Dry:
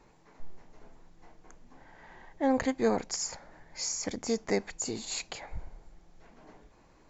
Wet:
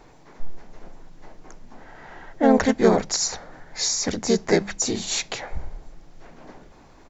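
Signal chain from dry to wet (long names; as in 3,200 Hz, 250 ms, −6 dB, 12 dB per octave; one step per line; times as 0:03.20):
pitch-shifted copies added −3 semitones −2 dB
mains-hum notches 50/100/150/200 Hz
level +8 dB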